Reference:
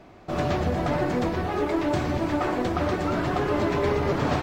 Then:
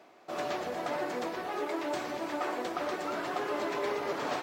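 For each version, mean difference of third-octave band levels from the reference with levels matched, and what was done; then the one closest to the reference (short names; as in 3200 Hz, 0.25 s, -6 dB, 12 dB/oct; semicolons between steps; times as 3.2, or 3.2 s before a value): 6.0 dB: HPF 400 Hz 12 dB/oct; high shelf 6500 Hz +6 dB; reverse; upward compressor, threshold -42 dBFS; reverse; gain -6 dB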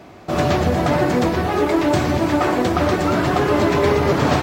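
1.5 dB: HPF 63 Hz; high shelf 6100 Hz +7 dB; gain +7.5 dB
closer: second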